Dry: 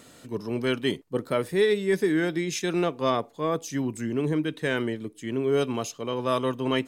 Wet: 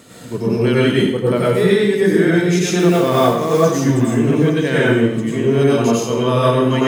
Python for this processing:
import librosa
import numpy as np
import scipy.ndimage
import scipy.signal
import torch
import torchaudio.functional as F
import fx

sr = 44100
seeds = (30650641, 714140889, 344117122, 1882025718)

p1 = fx.rider(x, sr, range_db=4, speed_s=0.5)
p2 = x + F.gain(torch.from_numpy(p1), 1.0).numpy()
p3 = fx.quant_float(p2, sr, bits=2, at=(2.79, 3.52))
p4 = scipy.signal.sosfilt(scipy.signal.butter(2, 50.0, 'highpass', fs=sr, output='sos'), p3)
p5 = fx.low_shelf(p4, sr, hz=380.0, db=3.5)
p6 = p5 + fx.echo_feedback(p5, sr, ms=861, feedback_pct=37, wet_db=-15.5, dry=0)
p7 = fx.rev_plate(p6, sr, seeds[0], rt60_s=0.77, hf_ratio=0.85, predelay_ms=80, drr_db=-7.0)
y = F.gain(torch.from_numpy(p7), -4.0).numpy()